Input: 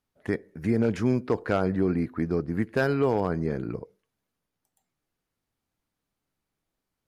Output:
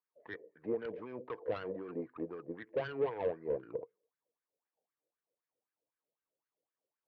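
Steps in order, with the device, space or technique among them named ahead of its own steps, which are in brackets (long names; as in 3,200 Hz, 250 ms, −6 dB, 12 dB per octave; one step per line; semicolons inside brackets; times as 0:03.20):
wah-wah guitar rig (LFO wah 3.9 Hz 510–1,600 Hz, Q 5.8; tube saturation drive 35 dB, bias 0.4; loudspeaker in its box 78–3,800 Hz, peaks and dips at 130 Hz +7 dB, 320 Hz +6 dB, 470 Hz +8 dB, 780 Hz −4 dB, 1,400 Hz −10 dB)
level +3.5 dB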